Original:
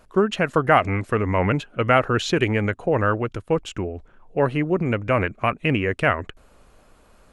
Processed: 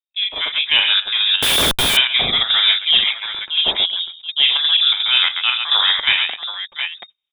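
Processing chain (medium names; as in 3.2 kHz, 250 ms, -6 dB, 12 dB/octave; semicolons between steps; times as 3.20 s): gate -41 dBFS, range -45 dB; 2.99–3.47 s: inverse Chebyshev high-pass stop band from 690 Hz, stop band 50 dB; transient shaper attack -6 dB, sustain -1 dB; multi-tap echo 40/65/134/245/728/734 ms -5/-12/-7/-18/-15.5/-13 dB; saturation -10.5 dBFS, distortion -18 dB; square tremolo 2.8 Hz, depth 60%, duty 80%; frequency inversion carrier 3.7 kHz; 1.42–1.97 s: Schmitt trigger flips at -29.5 dBFS; level rider gain up to 14.5 dB; trim -1 dB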